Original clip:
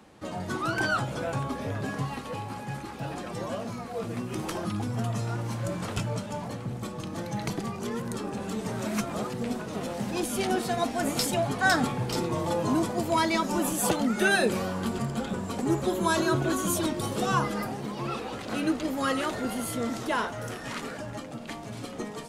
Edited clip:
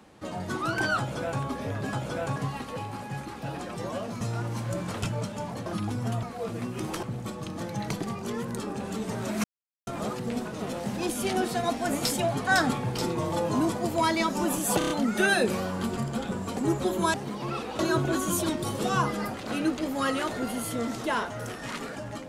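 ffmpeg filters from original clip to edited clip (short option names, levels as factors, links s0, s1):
-filter_complex "[0:a]asplit=15[s0][s1][s2][s3][s4][s5][s6][s7][s8][s9][s10][s11][s12][s13][s14];[s0]atrim=end=1.932[s15];[s1]atrim=start=0.988:end=1.422[s16];[s2]atrim=start=1.928:end=3.782[s17];[s3]atrim=start=5.148:end=6.602[s18];[s4]atrim=start=4.578:end=5.152[s19];[s5]atrim=start=3.778:end=4.582[s20];[s6]atrim=start=6.598:end=9.01,asetpts=PTS-STARTPTS,afade=t=out:st=2.408:d=0.004:c=hsin,apad=pad_dur=0.43[s21];[s7]atrim=start=9.01:end=13.952,asetpts=PTS-STARTPTS,afade=t=in:d=0.004:c=hsin[s22];[s8]atrim=start=13.918:end=13.952[s23];[s9]atrim=start=13.918:end=13.952[s24];[s10]atrim=start=13.918:end=13.952[s25];[s11]atrim=start=13.918:end=16.162[s26];[s12]atrim=start=17.708:end=18.362[s27];[s13]atrim=start=16.158:end=17.712[s28];[s14]atrim=start=18.358[s29];[s15][s16]acrossfade=d=0.004:c1=hsin:c2=hsin[s30];[s30][s17]acrossfade=d=0.004:c1=hsin:c2=hsin[s31];[s31][s18]acrossfade=d=0.004:c1=hsin:c2=hsin[s32];[s32][s19]acrossfade=d=0.004:c1=hsin:c2=hsin[s33];[s33][s20]acrossfade=d=0.004:c1=hsin:c2=hsin[s34];[s21][s22]concat=n=2:v=0:a=1[s35];[s34][s35]acrossfade=d=0.004:c1=hsin:c2=hsin[s36];[s36][s23]acrossfade=d=0.004:c1=hsin:c2=hsin[s37];[s37][s24]acrossfade=d=0.004:c1=hsin:c2=hsin[s38];[s38][s25]acrossfade=d=0.004:c1=hsin:c2=hsin[s39];[s39][s26]acrossfade=d=0.004:c1=hsin:c2=hsin[s40];[s40][s27]acrossfade=d=0.004:c1=hsin:c2=hsin[s41];[s41][s28]acrossfade=d=0.004:c1=hsin:c2=hsin[s42];[s42][s29]acrossfade=d=0.004:c1=hsin:c2=hsin"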